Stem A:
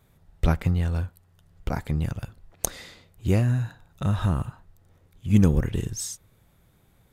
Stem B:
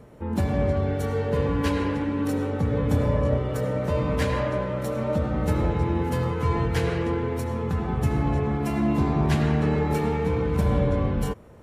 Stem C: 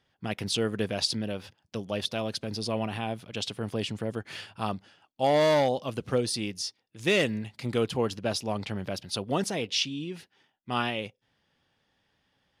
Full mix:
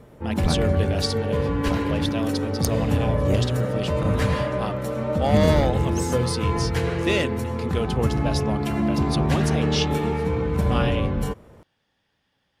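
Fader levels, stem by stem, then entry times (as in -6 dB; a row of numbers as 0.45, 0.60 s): -2.5, +0.5, +0.5 dB; 0.00, 0.00, 0.00 s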